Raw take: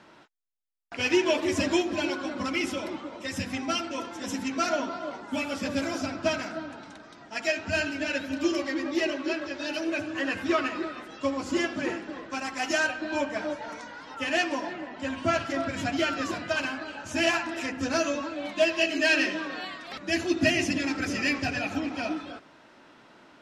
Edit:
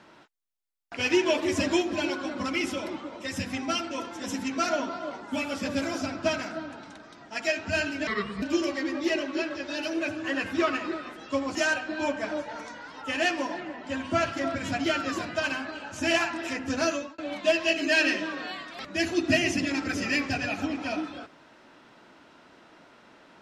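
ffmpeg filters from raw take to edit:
ffmpeg -i in.wav -filter_complex "[0:a]asplit=5[link_01][link_02][link_03][link_04][link_05];[link_01]atrim=end=8.074[link_06];[link_02]atrim=start=8.07:end=8.33,asetpts=PTS-STARTPTS,asetrate=32634,aresample=44100[link_07];[link_03]atrim=start=8.326:end=11.462[link_08];[link_04]atrim=start=12.678:end=18.31,asetpts=PTS-STARTPTS,afade=type=out:start_time=5.342:duration=0.29[link_09];[link_05]atrim=start=18.31,asetpts=PTS-STARTPTS,afade=type=in:duration=0.004:curve=hsin[link_10];[link_06][link_07]acrossfade=duration=0.004:curve1=hsin:curve2=hsin[link_11];[link_11][link_08]acrossfade=duration=0.004:curve1=hsin:curve2=hsin[link_12];[link_09][link_10]concat=n=2:v=0:a=1[link_13];[link_12][link_13]acrossfade=duration=0.004:curve1=hsin:curve2=hsin" out.wav

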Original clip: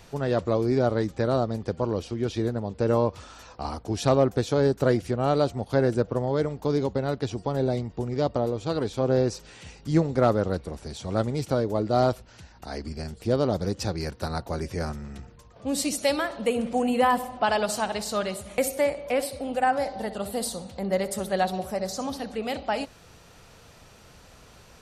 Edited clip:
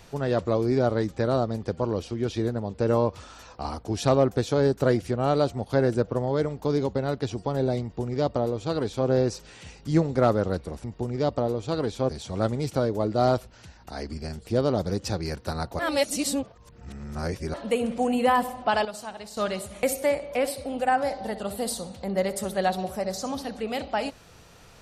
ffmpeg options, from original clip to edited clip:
ffmpeg -i in.wav -filter_complex "[0:a]asplit=7[link_01][link_02][link_03][link_04][link_05][link_06][link_07];[link_01]atrim=end=10.842[link_08];[link_02]atrim=start=7.818:end=9.072[link_09];[link_03]atrim=start=10.838:end=14.542[link_10];[link_04]atrim=start=14.538:end=16.292,asetpts=PTS-STARTPTS,areverse[link_11];[link_05]atrim=start=16.288:end=17.602[link_12];[link_06]atrim=start=17.598:end=18.122,asetpts=PTS-STARTPTS,volume=-10dB[link_13];[link_07]atrim=start=18.118[link_14];[link_08][link_09]acrossfade=duration=0.004:curve1=hsin:curve2=hsin[link_15];[link_15][link_10]acrossfade=duration=0.004:curve1=hsin:curve2=hsin[link_16];[link_16][link_11]acrossfade=duration=0.004:curve1=hsin:curve2=hsin[link_17];[link_17][link_12]acrossfade=duration=0.004:curve1=hsin:curve2=hsin[link_18];[link_18][link_13]acrossfade=duration=0.004:curve1=hsin:curve2=hsin[link_19];[link_19][link_14]acrossfade=duration=0.004:curve1=hsin:curve2=hsin" out.wav

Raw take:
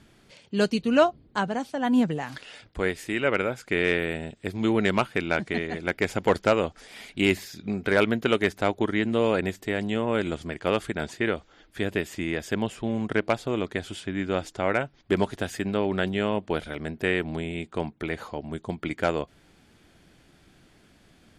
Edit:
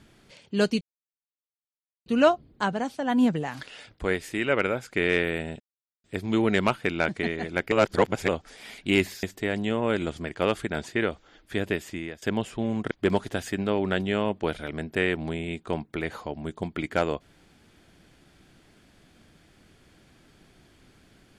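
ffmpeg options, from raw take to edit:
ffmpeg -i in.wav -filter_complex "[0:a]asplit=8[link_01][link_02][link_03][link_04][link_05][link_06][link_07][link_08];[link_01]atrim=end=0.81,asetpts=PTS-STARTPTS,afade=type=out:start_time=0.806:duration=0.004:curve=hsin,apad=pad_dur=1.25[link_09];[link_02]atrim=start=0.81:end=4.35,asetpts=PTS-STARTPTS,afade=type=in:duration=0.004:curve=hsin,afade=type=out:start_time=3.536:duration=0.004:curve=hsin,apad=pad_dur=0.44[link_10];[link_03]atrim=start=4.35:end=6.032,asetpts=PTS-STARTPTS,afade=type=in:duration=0.004:curve=hsin[link_11];[link_04]atrim=start=6.028:end=6.592,asetpts=PTS-STARTPTS,areverse[link_12];[link_05]atrim=start=6.588:end=7.542[link_13];[link_06]atrim=start=9.478:end=12.47,asetpts=PTS-STARTPTS,afade=type=out:start_time=2.372:duration=0.62:curve=qsin:silence=0.112202[link_14];[link_07]atrim=start=12.47:end=13.162,asetpts=PTS-STARTPTS,afade=type=in:duration=0.004:curve=hsin:silence=0.112202[link_15];[link_08]atrim=start=14.978[link_16];[link_09][link_10][link_11]concat=n=3:v=0:a=1[link_17];[link_17][link_12]acrossfade=duration=0.004:curve1=hsin:curve2=hsin[link_18];[link_18][link_13]acrossfade=duration=0.004:curve1=hsin:curve2=hsin[link_19];[link_14][link_15]concat=n=2:v=0:a=1[link_20];[link_19][link_20]acrossfade=duration=0.004:curve1=hsin:curve2=hsin[link_21];[link_21][link_16]acrossfade=duration=0.004:curve1=hsin:curve2=hsin" out.wav

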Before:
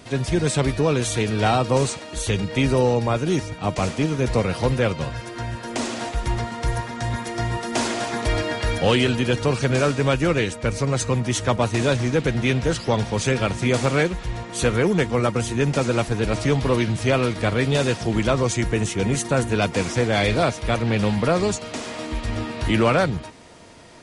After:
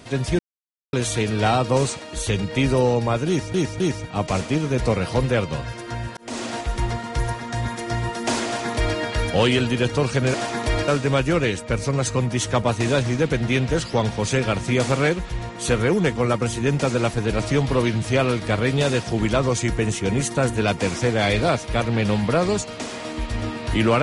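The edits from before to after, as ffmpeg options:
ffmpeg -i in.wav -filter_complex "[0:a]asplit=8[link_01][link_02][link_03][link_04][link_05][link_06][link_07][link_08];[link_01]atrim=end=0.39,asetpts=PTS-STARTPTS,afade=type=out:start_time=0.386:duration=0.004:curve=hsin[link_09];[link_02]atrim=start=0.39:end=0.93,asetpts=PTS-STARTPTS,volume=0[link_10];[link_03]atrim=start=0.93:end=3.542,asetpts=PTS-STARTPTS,afade=type=in:duration=0.004:curve=hsin[link_11];[link_04]atrim=start=3.278:end=3.542[link_12];[link_05]atrim=start=3.278:end=5.65,asetpts=PTS-STARTPTS,afade=type=out:start_time=2.368:duration=0.004:curve=hsin[link_13];[link_06]atrim=start=5.65:end=9.822,asetpts=PTS-STARTPTS,afade=type=in:duration=0.27[link_14];[link_07]atrim=start=7.928:end=8.472[link_15];[link_08]atrim=start=9.818[link_16];[link_09][link_10][link_11]concat=n=3:v=0:a=1[link_17];[link_17][link_12]acrossfade=duration=0.004:curve1=hsin:curve2=hsin[link_18];[link_13][link_14]concat=n=2:v=0:a=1[link_19];[link_18][link_19]acrossfade=duration=0.004:curve1=hsin:curve2=hsin[link_20];[link_20][link_15]acrossfade=duration=0.004:curve1=hsin:curve2=hsin[link_21];[link_21][link_16]acrossfade=duration=0.004:curve1=hsin:curve2=hsin" out.wav

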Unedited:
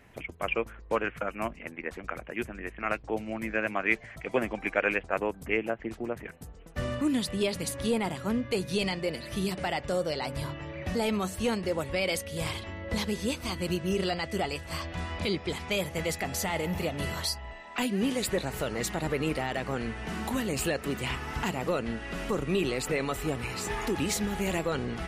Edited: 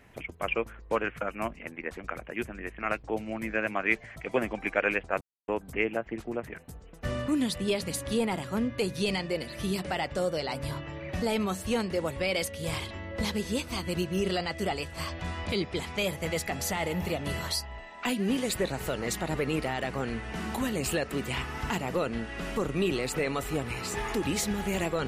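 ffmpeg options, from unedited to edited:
ffmpeg -i in.wav -filter_complex "[0:a]asplit=2[link_01][link_02];[link_01]atrim=end=5.21,asetpts=PTS-STARTPTS,afade=type=out:start_time=5.206:duration=0.004:curve=hsin,apad=pad_dur=0.27[link_03];[link_02]atrim=start=5.21,asetpts=PTS-STARTPTS,afade=type=in:duration=0.004:curve=hsin[link_04];[link_03][link_04]concat=n=2:v=0:a=1" out.wav

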